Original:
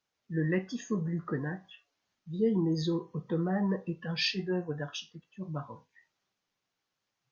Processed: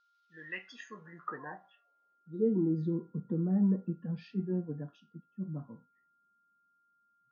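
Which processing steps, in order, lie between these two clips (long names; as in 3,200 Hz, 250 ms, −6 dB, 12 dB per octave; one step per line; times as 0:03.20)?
band-pass filter sweep 4,000 Hz → 220 Hz, 0:00.23–0:02.79
steady tone 1,400 Hz −75 dBFS
level +4.5 dB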